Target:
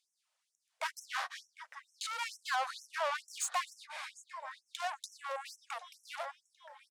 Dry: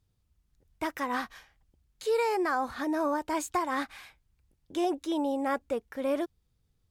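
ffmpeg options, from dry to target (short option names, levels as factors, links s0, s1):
-filter_complex "[0:a]lowpass=f=10000:w=0.5412,lowpass=f=10000:w=1.3066,equalizer=f=260:t=o:w=0.33:g=9,asplit=2[s0][s1];[s1]adelay=754,lowpass=f=4900:p=1,volume=0.133,asplit=2[s2][s3];[s3]adelay=754,lowpass=f=4900:p=1,volume=0.5,asplit=2[s4][s5];[s5]adelay=754,lowpass=f=4900:p=1,volume=0.5,asplit=2[s6][s7];[s7]adelay=754,lowpass=f=4900:p=1,volume=0.5[s8];[s0][s2][s4][s6][s8]amix=inputs=5:normalize=0,asettb=1/sr,asplit=3[s9][s10][s11];[s9]atrim=end=3.734[s12];[s10]atrim=start=3.73:end=4.8,asetpts=PTS-STARTPTS,afade=t=in:d=0.004:c=qsin,afade=t=out:st=1.066:d=0.004:c=qsin,acompressor=threshold=0.0141:ratio=2.5[s13];[s11]atrim=start=4.796[s14];[s12][s13]acrossfade=d=0.004:c1=hsin:c2=qsin[s15];[s15][s14]acrossfade=d=0.004:c1=qsin:c2=hsin,asoftclip=type=tanh:threshold=0.02,afftfilt=real='re*gte(b*sr/1024,480*pow(5500/480,0.5+0.5*sin(2*PI*2.2*pts/sr)))':imag='im*gte(b*sr/1024,480*pow(5500/480,0.5+0.5*sin(2*PI*2.2*pts/sr)))':win_size=1024:overlap=0.75,volume=2"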